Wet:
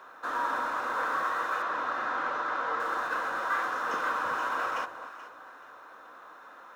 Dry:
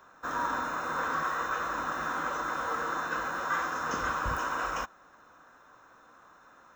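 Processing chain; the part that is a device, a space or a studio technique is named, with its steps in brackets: phone line with mismatched companding (BPF 360–3600 Hz; G.711 law mismatch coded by mu); 1.62–2.8 LPF 5000 Hz 12 dB/oct; echo with dull and thin repeats by turns 0.215 s, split 960 Hz, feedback 54%, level -9 dB

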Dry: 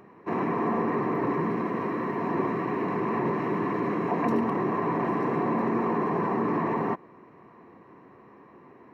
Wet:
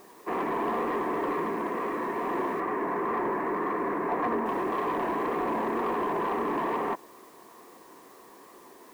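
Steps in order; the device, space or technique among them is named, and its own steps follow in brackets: tape answering machine (BPF 350–2900 Hz; soft clip -24 dBFS, distortion -17 dB; wow and flutter; white noise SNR 29 dB); 2.6–4.46 resonant high shelf 2300 Hz -6 dB, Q 1.5; gain +2 dB

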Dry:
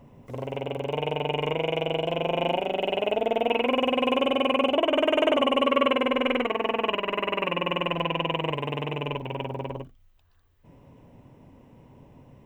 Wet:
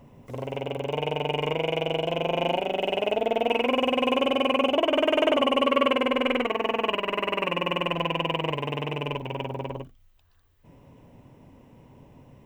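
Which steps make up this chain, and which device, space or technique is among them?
exciter from parts (in parallel at -6 dB: HPF 3300 Hz 6 dB/oct + soft clip -38.5 dBFS, distortion -4 dB)

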